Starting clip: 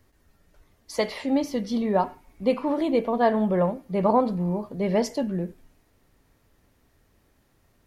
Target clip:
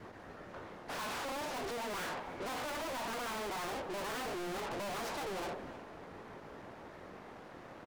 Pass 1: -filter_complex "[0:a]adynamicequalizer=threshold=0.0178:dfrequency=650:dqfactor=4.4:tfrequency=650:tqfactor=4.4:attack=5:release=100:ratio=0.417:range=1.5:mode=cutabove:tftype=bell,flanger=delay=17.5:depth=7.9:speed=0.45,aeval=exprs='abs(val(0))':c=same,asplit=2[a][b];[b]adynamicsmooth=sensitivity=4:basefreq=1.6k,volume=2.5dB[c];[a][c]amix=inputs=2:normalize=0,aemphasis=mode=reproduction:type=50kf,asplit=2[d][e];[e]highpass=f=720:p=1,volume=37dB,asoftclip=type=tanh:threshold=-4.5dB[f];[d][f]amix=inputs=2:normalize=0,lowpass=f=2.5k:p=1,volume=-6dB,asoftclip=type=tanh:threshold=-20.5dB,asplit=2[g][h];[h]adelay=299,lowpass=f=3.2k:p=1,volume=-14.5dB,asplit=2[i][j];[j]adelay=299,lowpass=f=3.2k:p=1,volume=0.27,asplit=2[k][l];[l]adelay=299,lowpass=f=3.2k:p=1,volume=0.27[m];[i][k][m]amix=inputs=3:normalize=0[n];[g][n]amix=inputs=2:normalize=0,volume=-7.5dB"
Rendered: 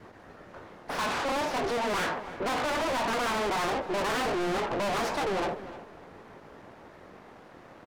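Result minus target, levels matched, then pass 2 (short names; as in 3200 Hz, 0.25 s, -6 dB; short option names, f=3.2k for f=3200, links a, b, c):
soft clip: distortion -4 dB
-filter_complex "[0:a]adynamicequalizer=threshold=0.0178:dfrequency=650:dqfactor=4.4:tfrequency=650:tqfactor=4.4:attack=5:release=100:ratio=0.417:range=1.5:mode=cutabove:tftype=bell,flanger=delay=17.5:depth=7.9:speed=0.45,aeval=exprs='abs(val(0))':c=same,asplit=2[a][b];[b]adynamicsmooth=sensitivity=4:basefreq=1.6k,volume=2.5dB[c];[a][c]amix=inputs=2:normalize=0,aemphasis=mode=reproduction:type=50kf,asplit=2[d][e];[e]highpass=f=720:p=1,volume=37dB,asoftclip=type=tanh:threshold=-4.5dB[f];[d][f]amix=inputs=2:normalize=0,lowpass=f=2.5k:p=1,volume=-6dB,asoftclip=type=tanh:threshold=-31.5dB,asplit=2[g][h];[h]adelay=299,lowpass=f=3.2k:p=1,volume=-14.5dB,asplit=2[i][j];[j]adelay=299,lowpass=f=3.2k:p=1,volume=0.27,asplit=2[k][l];[l]adelay=299,lowpass=f=3.2k:p=1,volume=0.27[m];[i][k][m]amix=inputs=3:normalize=0[n];[g][n]amix=inputs=2:normalize=0,volume=-7.5dB"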